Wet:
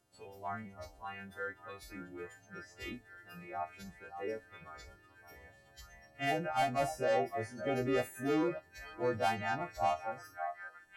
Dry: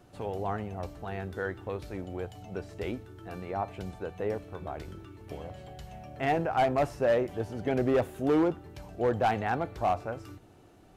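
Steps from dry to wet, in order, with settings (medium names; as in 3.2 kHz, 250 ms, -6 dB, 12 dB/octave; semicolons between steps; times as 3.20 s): partials quantised in pitch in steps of 2 st; repeats whose band climbs or falls 569 ms, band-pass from 870 Hz, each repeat 0.7 oct, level -4.5 dB; spectral noise reduction 12 dB; trim -6 dB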